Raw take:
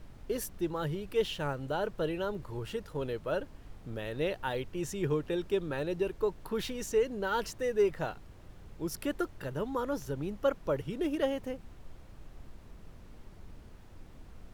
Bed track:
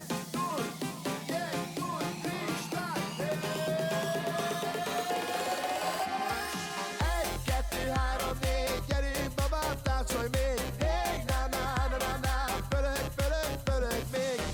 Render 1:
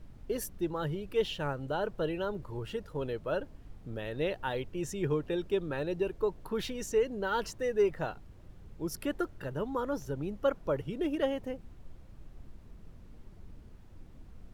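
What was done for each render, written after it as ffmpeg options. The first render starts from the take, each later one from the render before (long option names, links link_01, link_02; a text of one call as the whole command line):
ffmpeg -i in.wav -af "afftdn=noise_reduction=6:noise_floor=-52" out.wav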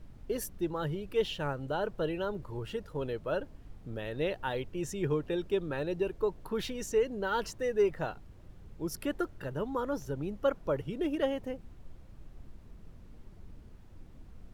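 ffmpeg -i in.wav -af anull out.wav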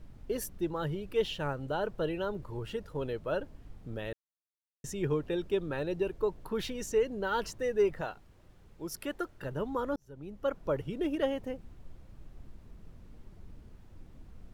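ffmpeg -i in.wav -filter_complex "[0:a]asettb=1/sr,asplit=3[link_01][link_02][link_03];[link_01]atrim=end=8.014[link_04];[link_02]atrim=start=8.01:end=9.42,asetpts=PTS-STARTPTS,afade=type=in:duration=0.004:curve=qsin,afade=type=out:start_time=1.406:duration=0.004:curve=qsin,lowshelf=frequency=350:gain=-8[link_05];[link_03]atrim=start=9.416[link_06];[link_04][link_05]acrossfade=duration=0.004:curve1=hsin:curve2=qsin[link_07];[link_07][link_06]acrossfade=duration=0.004:curve1=qsin:curve2=hsin,asplit=4[link_08][link_09][link_10][link_11];[link_08]atrim=end=4.13,asetpts=PTS-STARTPTS,afade=type=out:start_time=4.126:duration=0.004:curve=hsin[link_12];[link_09]atrim=start=4.13:end=4.84,asetpts=PTS-STARTPTS,volume=0[link_13];[link_10]atrim=start=4.84:end=9.96,asetpts=PTS-STARTPTS,afade=type=in:duration=0.004:curve=hsin,afade=type=out:start_time=5.116:duration=0.004:curve=hsin[link_14];[link_11]atrim=start=9.96,asetpts=PTS-STARTPTS,afade=type=in:duration=0.74[link_15];[link_12][link_13][link_14][link_15]concat=n=4:v=0:a=1" out.wav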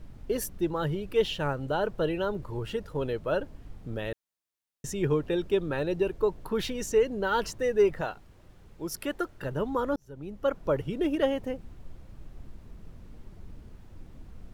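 ffmpeg -i in.wav -af "volume=4.5dB" out.wav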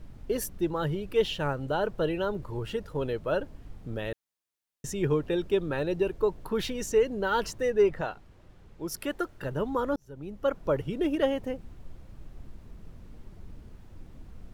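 ffmpeg -i in.wav -filter_complex "[0:a]asettb=1/sr,asplit=3[link_01][link_02][link_03];[link_01]atrim=end=7.704[link_04];[link_02]atrim=start=7.7:end=8.88,asetpts=PTS-STARTPTS,afade=type=in:duration=0.004:curve=qsin,afade=type=out:start_time=1.176:duration=0.004:curve=qsin,highshelf=frequency=7200:gain=-8[link_05];[link_03]atrim=start=8.876[link_06];[link_04][link_05]acrossfade=duration=0.004:curve1=hsin:curve2=qsin[link_07];[link_07][link_06]acrossfade=duration=0.004:curve1=qsin:curve2=hsin" out.wav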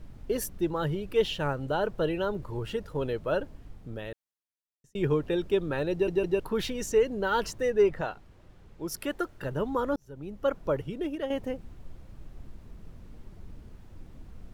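ffmpeg -i in.wav -filter_complex "[0:a]asplit=6[link_01][link_02][link_03][link_04][link_05][link_06];[link_01]atrim=end=4.95,asetpts=PTS-STARTPTS,afade=type=out:start_time=3.42:duration=1.53[link_07];[link_02]atrim=start=4.95:end=6.082,asetpts=PTS-STARTPTS,afade=type=in:duration=0.004:curve=hsin[link_08];[link_03]atrim=start=5.918:end=6.082[link_09];[link_04]atrim=start=5.918:end=6.082[link_10];[link_05]atrim=start=6.398:end=11.3,asetpts=PTS-STARTPTS,afade=type=out:start_time=4.152:duration=0.75:silence=0.354813[link_11];[link_06]atrim=start=11.3,asetpts=PTS-STARTPTS,afade=type=in:duration=0.004:curve=hsin:silence=0.354813[link_12];[link_07][link_08]concat=n=2:v=0:a=1[link_13];[link_13][link_09]acrossfade=duration=0.004:curve1=hsin:curve2=hsin[link_14];[link_14][link_10]acrossfade=duration=0.004:curve1=hsin:curve2=hsin[link_15];[link_11][link_12]concat=n=2:v=0:a=1[link_16];[link_15][link_16]acrossfade=duration=0.004:curve1=hsin:curve2=hsin" out.wav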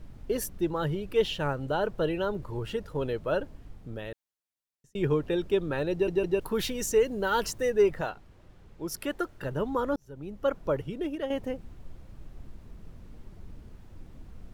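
ffmpeg -i in.wav -filter_complex "[0:a]asettb=1/sr,asplit=3[link_01][link_02][link_03];[link_01]atrim=end=6.414[link_04];[link_02]atrim=start=6.41:end=8.11,asetpts=PTS-STARTPTS,afade=type=in:duration=0.004:curve=qsin,afade=type=out:start_time=1.696:duration=0.004:curve=qsin,highshelf=frequency=7100:gain=9.5[link_05];[link_03]atrim=start=8.106[link_06];[link_04][link_05]acrossfade=duration=0.004:curve1=hsin:curve2=qsin[link_07];[link_07][link_06]acrossfade=duration=0.004:curve1=qsin:curve2=hsin" out.wav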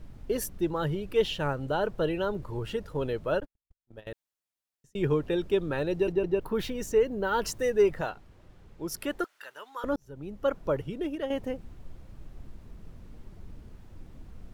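ffmpeg -i in.wav -filter_complex "[0:a]asettb=1/sr,asplit=3[link_01][link_02][link_03];[link_01]atrim=end=3.404[link_04];[link_02]atrim=start=3.4:end=4.07,asetpts=PTS-STARTPTS,afade=type=in:duration=0.004:curve=qsin,afade=type=out:start_time=0.666:duration=0.004:curve=qsin,agate=range=-59dB:threshold=-36dB:ratio=16:release=100:detection=peak[link_05];[link_03]atrim=start=4.066[link_06];[link_04][link_05]acrossfade=duration=0.004:curve1=hsin:curve2=qsin[link_07];[link_07][link_06]acrossfade=duration=0.004:curve1=qsin:curve2=hsin,asettb=1/sr,asplit=3[link_08][link_09][link_10];[link_08]atrim=end=6.124[link_11];[link_09]atrim=start=6.12:end=7.45,asetpts=PTS-STARTPTS,afade=type=in:duration=0.004:curve=qsin,afade=type=out:start_time=1.326:duration=0.004:curve=qsin,equalizer=frequency=9300:width=0.31:gain=-9.5[link_12];[link_10]atrim=start=7.446[link_13];[link_11][link_12]acrossfade=duration=0.004:curve1=hsin:curve2=qsin[link_14];[link_14][link_13]acrossfade=duration=0.004:curve1=qsin:curve2=hsin,asettb=1/sr,asplit=3[link_15][link_16][link_17];[link_15]atrim=end=9.244[link_18];[link_16]atrim=start=9.24:end=9.84,asetpts=PTS-STARTPTS,afade=type=in:duration=0.004:curve=qsin,afade=type=out:start_time=0.596:duration=0.004:curve=qsin,highpass=1400[link_19];[link_17]atrim=start=9.836[link_20];[link_18][link_19]acrossfade=duration=0.004:curve1=hsin:curve2=qsin[link_21];[link_21][link_20]acrossfade=duration=0.004:curve1=qsin:curve2=hsin" out.wav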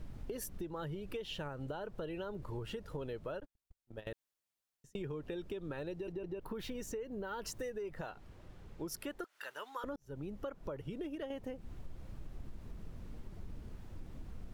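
ffmpeg -i in.wav -af "alimiter=limit=-24dB:level=0:latency=1:release=207,acompressor=threshold=-39dB:ratio=6" out.wav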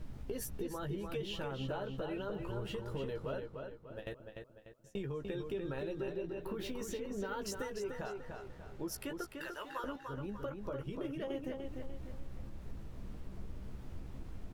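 ffmpeg -i in.wav -filter_complex "[0:a]asplit=2[link_01][link_02];[link_02]adelay=15,volume=-7dB[link_03];[link_01][link_03]amix=inputs=2:normalize=0,asplit=2[link_04][link_05];[link_05]adelay=296,lowpass=frequency=5000:poles=1,volume=-5dB,asplit=2[link_06][link_07];[link_07]adelay=296,lowpass=frequency=5000:poles=1,volume=0.42,asplit=2[link_08][link_09];[link_09]adelay=296,lowpass=frequency=5000:poles=1,volume=0.42,asplit=2[link_10][link_11];[link_11]adelay=296,lowpass=frequency=5000:poles=1,volume=0.42,asplit=2[link_12][link_13];[link_13]adelay=296,lowpass=frequency=5000:poles=1,volume=0.42[link_14];[link_04][link_06][link_08][link_10][link_12][link_14]amix=inputs=6:normalize=0" out.wav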